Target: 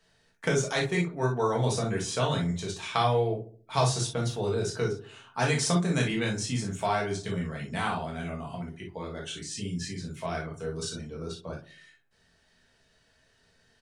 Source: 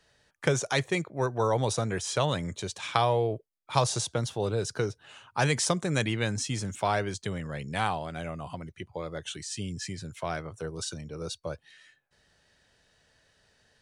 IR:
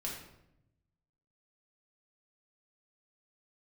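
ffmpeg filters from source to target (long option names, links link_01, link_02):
-filter_complex "[0:a]asettb=1/sr,asplit=3[link_01][link_02][link_03];[link_01]atrim=end=11.134[link_04];[link_02]atrim=start=11.13:end=11.53,asetpts=PTS-STARTPTS,afade=type=in:duration=0.004:curve=qsin,afade=type=out:start_time=0.396:duration=0.004:curve=qsin,highshelf=frequency=3900:gain=-9[link_05];[link_03]atrim=start=11.526[link_06];[link_04][link_05]acrossfade=duration=0.004:curve1=hsin:curve2=qsin[link_07];[link_07][link_06]acrossfade=duration=0.004:curve1=qsin:curve2=hsin,asplit=2[link_08][link_09];[link_09]adelay=69,lowpass=frequency=880:poles=1,volume=-12dB,asplit=2[link_10][link_11];[link_11]adelay=69,lowpass=frequency=880:poles=1,volume=0.5,asplit=2[link_12][link_13];[link_13]adelay=69,lowpass=frequency=880:poles=1,volume=0.5,asplit=2[link_14][link_15];[link_15]adelay=69,lowpass=frequency=880:poles=1,volume=0.5,asplit=2[link_16][link_17];[link_17]adelay=69,lowpass=frequency=880:poles=1,volume=0.5[link_18];[link_08][link_10][link_12][link_14][link_16][link_18]amix=inputs=6:normalize=0[link_19];[1:a]atrim=start_sample=2205,atrim=end_sample=3087[link_20];[link_19][link_20]afir=irnorm=-1:irlink=0"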